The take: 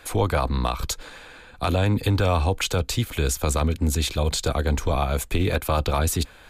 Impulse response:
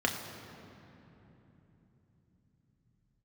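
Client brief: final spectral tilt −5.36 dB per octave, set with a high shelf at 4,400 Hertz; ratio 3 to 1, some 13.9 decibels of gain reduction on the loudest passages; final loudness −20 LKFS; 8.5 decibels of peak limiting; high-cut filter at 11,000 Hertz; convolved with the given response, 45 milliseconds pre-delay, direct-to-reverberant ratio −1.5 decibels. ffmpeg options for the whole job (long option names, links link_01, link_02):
-filter_complex "[0:a]lowpass=11000,highshelf=frequency=4400:gain=-6.5,acompressor=threshold=-37dB:ratio=3,alimiter=level_in=6dB:limit=-24dB:level=0:latency=1,volume=-6dB,asplit=2[link_01][link_02];[1:a]atrim=start_sample=2205,adelay=45[link_03];[link_02][link_03]afir=irnorm=-1:irlink=0,volume=-8dB[link_04];[link_01][link_04]amix=inputs=2:normalize=0,volume=16.5dB"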